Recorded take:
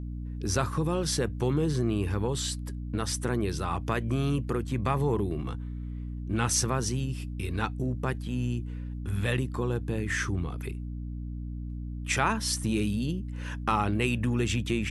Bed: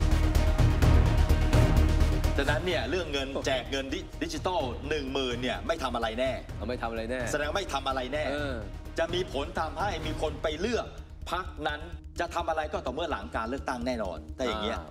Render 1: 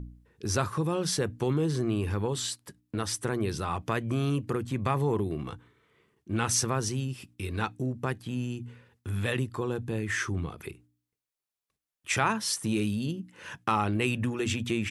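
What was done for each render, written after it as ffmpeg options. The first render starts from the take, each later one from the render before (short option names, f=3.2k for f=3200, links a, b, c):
-af "bandreject=f=60:t=h:w=4,bandreject=f=120:t=h:w=4,bandreject=f=180:t=h:w=4,bandreject=f=240:t=h:w=4,bandreject=f=300:t=h:w=4"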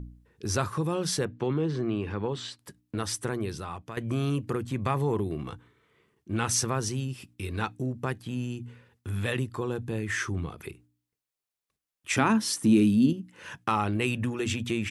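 -filter_complex "[0:a]asettb=1/sr,asplit=3[a][b][c];[a]atrim=end=1.254[d];[b]atrim=start=1.25:end=2.59,asetpts=PTS-STARTPTS,afade=t=in:d=0.004:c=qsin,afade=t=out:st=1.336:d=0.004:c=qsin,highpass=120,lowpass=3.6k[e];[c]atrim=start=2.586[f];[d][e]acrossfade=d=0.004:c1=hsin:c2=qsin[g];[g][f]acrossfade=d=0.004:c1=qsin:c2=hsin,asettb=1/sr,asplit=3[h][i][j];[h]atrim=end=12.174[k];[i]atrim=start=12.17:end=13.13,asetpts=PTS-STARTPTS,afade=t=in:d=0.004:c=qsin,afade=t=out:st=0.956:d=0.004:c=qsin,equalizer=f=260:w=2:g=15[l];[j]atrim=start=13.126[m];[k][l]acrossfade=d=0.004:c1=hsin:c2=qsin[n];[n][m]acrossfade=d=0.004:c1=qsin:c2=hsin,asplit=2[o][p];[o]atrim=end=3.97,asetpts=PTS-STARTPTS,afade=t=out:st=3.2:d=0.77:silence=0.237137[q];[p]atrim=start=3.97,asetpts=PTS-STARTPTS,afade=t=in:d=0.004:c=hsin:silence=0.237137[r];[q][r]concat=n=2:v=0:a=1"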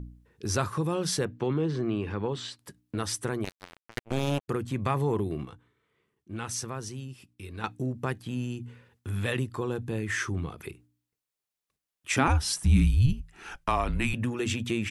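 -filter_complex "[0:a]asplit=3[a][b][c];[a]afade=t=out:st=3.43:d=0.02[d];[b]acrusher=bits=3:mix=0:aa=0.5,afade=t=in:st=3.43:d=0.02,afade=t=out:st=4.48:d=0.02[e];[c]afade=t=in:st=4.48:d=0.02[f];[d][e][f]amix=inputs=3:normalize=0,asettb=1/sr,asplit=3[g][h][i];[g]atrim=end=12.274[j];[h]atrim=start=12.27:end=14.14,asetpts=PTS-STARTPTS,afade=t=in:d=0.004:c=qsin,afade=t=out:st=1.866:d=0.004:c=qsin,afreqshift=-140[k];[i]atrim=start=14.136[l];[j][k]acrossfade=d=0.004:c1=hsin:c2=qsin[m];[m][l]acrossfade=d=0.004:c1=qsin:c2=hsin,asplit=3[n][o][p];[n]atrim=end=5.452[q];[o]atrim=start=5.448:end=7.642,asetpts=PTS-STARTPTS,volume=-7.5dB[r];[p]atrim=start=7.638[s];[q][r]acrossfade=d=0.004:c1=hsin:c2=hsin[t];[t][s]acrossfade=d=0.004:c1=hsin:c2=hsin"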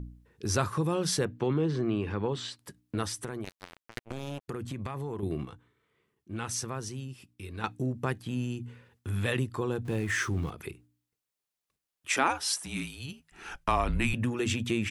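-filter_complex "[0:a]asettb=1/sr,asplit=3[a][b][c];[a]atrim=end=3.064[d];[b]atrim=start=3.06:end=5.23,asetpts=PTS-STARTPTS,afade=t=in:d=0.004:c=qsin,afade=t=out:st=2.166:d=0.004:c=qsin,acompressor=threshold=-32dB:ratio=6:attack=3.2:release=140:knee=1:detection=peak[e];[c]atrim=start=5.226[f];[d][e]acrossfade=d=0.004:c1=hsin:c2=qsin[g];[g][f]acrossfade=d=0.004:c1=qsin:c2=hsin,asettb=1/sr,asplit=3[h][i][j];[h]atrim=end=9.854[k];[i]atrim=start=9.85:end=10.5,asetpts=PTS-STARTPTS,afade=t=in:d=0.004:c=qsin,afade=t=out:st=0.646:d=0.004:c=qsin,aeval=exprs='val(0)+0.5*0.00668*sgn(val(0))':c=same[l];[j]atrim=start=10.496[m];[k][l]acrossfade=d=0.004:c1=hsin:c2=qsin[n];[n][m]acrossfade=d=0.004:c1=qsin:c2=hsin,asettb=1/sr,asplit=3[o][p][q];[o]atrim=end=12.114[r];[p]atrim=start=12.11:end=13.32,asetpts=PTS-STARTPTS,afade=t=in:d=0.004:c=qsin,afade=t=out:st=1.206:d=0.004:c=qsin,highpass=400[s];[q]atrim=start=13.316[t];[r][s]acrossfade=d=0.004:c1=hsin:c2=qsin[u];[u][t]acrossfade=d=0.004:c1=qsin:c2=hsin"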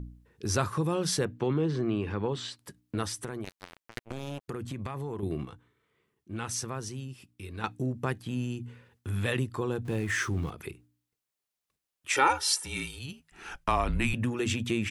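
-filter_complex "[0:a]asettb=1/sr,asplit=3[a][b][c];[a]atrim=end=12.154[d];[b]atrim=start=12.15:end=12.99,asetpts=PTS-STARTPTS,afade=t=in:d=0.004:c=qsin,afade=t=out:st=0.836:d=0.004:c=qsin,aecho=1:1:2.2:0.93,atrim=end_sample=37044[e];[c]atrim=start=12.986[f];[d][e]acrossfade=d=0.004:c1=hsin:c2=qsin[g];[g][f]acrossfade=d=0.004:c1=qsin:c2=hsin"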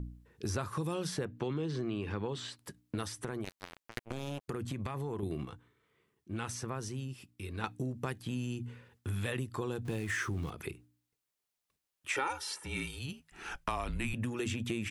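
-filter_complex "[0:a]acrossover=split=2700|7900[a][b][c];[a]acompressor=threshold=-33dB:ratio=4[d];[b]acompressor=threshold=-47dB:ratio=4[e];[c]acompressor=threshold=-51dB:ratio=4[f];[d][e][f]amix=inputs=3:normalize=0"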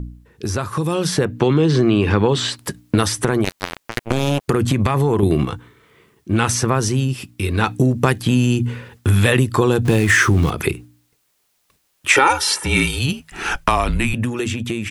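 -af "dynaudnorm=f=110:g=21:m=9.5dB,alimiter=level_in=11.5dB:limit=-1dB:release=50:level=0:latency=1"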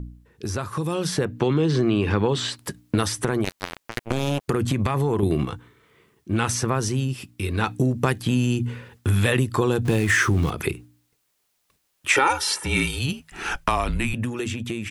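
-af "volume=-5.5dB"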